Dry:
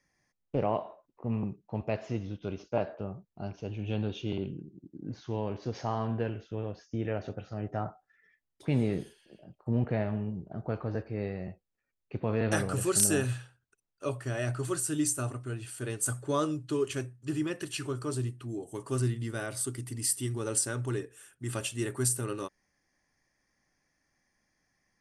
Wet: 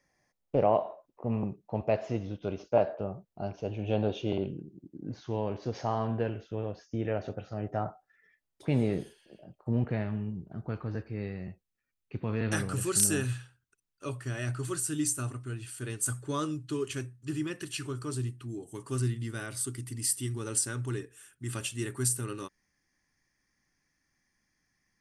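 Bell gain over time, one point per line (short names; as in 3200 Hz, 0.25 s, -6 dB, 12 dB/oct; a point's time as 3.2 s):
bell 620 Hz 1.1 oct
3.5 s +6.5 dB
4.13 s +14.5 dB
4.77 s +3 dB
9.58 s +3 dB
10.11 s -8.5 dB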